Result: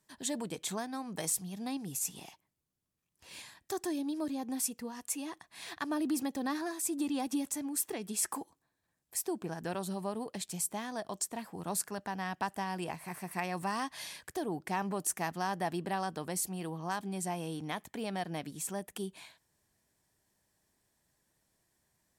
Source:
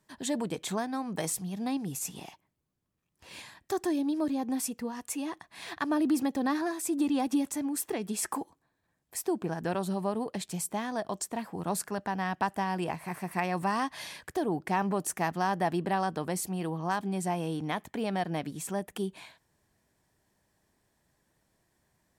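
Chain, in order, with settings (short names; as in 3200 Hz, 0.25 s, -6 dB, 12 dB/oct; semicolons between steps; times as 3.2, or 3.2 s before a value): bell 11000 Hz +7.5 dB 2.6 oct; gain -6 dB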